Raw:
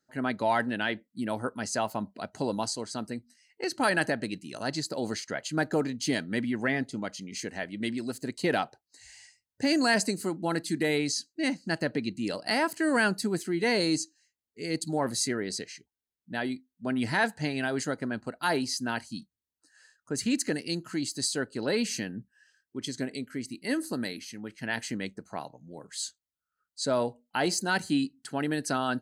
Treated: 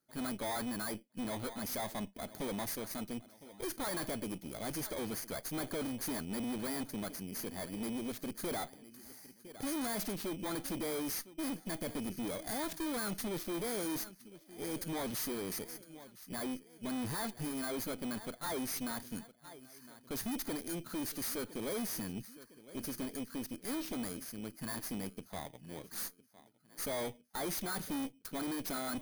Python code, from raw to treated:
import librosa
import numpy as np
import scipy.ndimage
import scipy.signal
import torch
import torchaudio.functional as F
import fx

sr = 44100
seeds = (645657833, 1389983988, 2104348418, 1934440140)

y = fx.bit_reversed(x, sr, seeds[0], block=16)
y = fx.echo_feedback(y, sr, ms=1009, feedback_pct=47, wet_db=-22.5)
y = fx.tube_stage(y, sr, drive_db=36.0, bias=0.65)
y = y * 10.0 ** (1.0 / 20.0)